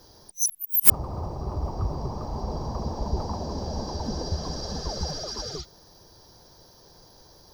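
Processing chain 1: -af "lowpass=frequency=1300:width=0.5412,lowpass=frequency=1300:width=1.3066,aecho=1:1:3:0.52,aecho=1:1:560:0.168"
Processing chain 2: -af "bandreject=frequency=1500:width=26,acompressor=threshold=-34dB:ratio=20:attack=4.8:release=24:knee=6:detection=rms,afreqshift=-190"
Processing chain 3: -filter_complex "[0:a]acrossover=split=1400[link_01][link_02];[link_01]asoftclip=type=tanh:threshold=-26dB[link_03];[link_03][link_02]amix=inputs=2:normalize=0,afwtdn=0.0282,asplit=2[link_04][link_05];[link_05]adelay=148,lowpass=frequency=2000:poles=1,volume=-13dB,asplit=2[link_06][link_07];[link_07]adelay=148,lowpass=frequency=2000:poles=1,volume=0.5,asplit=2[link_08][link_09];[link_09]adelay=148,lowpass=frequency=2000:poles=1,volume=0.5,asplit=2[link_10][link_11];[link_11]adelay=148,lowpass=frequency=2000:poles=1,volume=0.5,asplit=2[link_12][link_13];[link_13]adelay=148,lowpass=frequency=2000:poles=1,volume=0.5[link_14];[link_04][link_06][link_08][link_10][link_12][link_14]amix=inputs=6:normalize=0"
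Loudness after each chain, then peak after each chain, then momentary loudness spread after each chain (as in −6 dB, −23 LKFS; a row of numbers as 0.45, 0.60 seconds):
−32.5, −38.0, −27.0 LKFS; −13.0, −25.0, −3.0 dBFS; 9, 16, 20 LU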